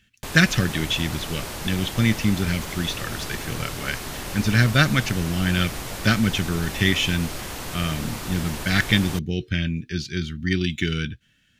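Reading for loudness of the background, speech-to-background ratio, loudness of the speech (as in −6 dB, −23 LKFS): −32.5 LKFS, 9.0 dB, −23.5 LKFS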